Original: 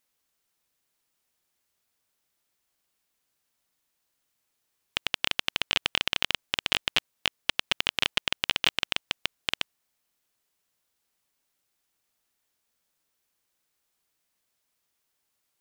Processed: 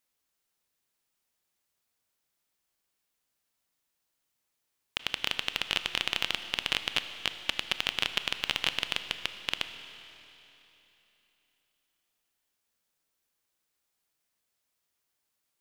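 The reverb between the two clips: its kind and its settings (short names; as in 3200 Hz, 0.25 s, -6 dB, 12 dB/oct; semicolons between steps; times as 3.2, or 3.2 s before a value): Schroeder reverb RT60 3.3 s, combs from 25 ms, DRR 9.5 dB; gain -3.5 dB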